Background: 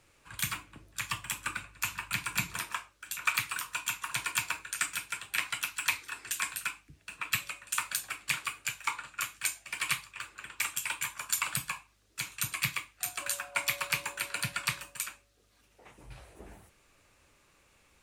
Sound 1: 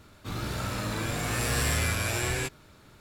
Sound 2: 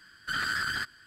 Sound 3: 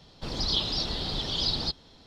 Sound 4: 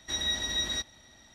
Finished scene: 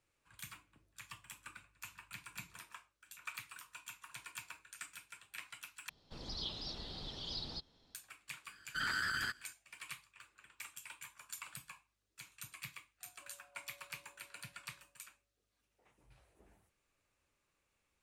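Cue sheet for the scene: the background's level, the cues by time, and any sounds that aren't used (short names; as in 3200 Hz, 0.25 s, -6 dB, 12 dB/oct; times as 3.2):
background -17 dB
5.89 replace with 3 -15 dB
8.47 add 2 -6.5 dB
not used: 1, 4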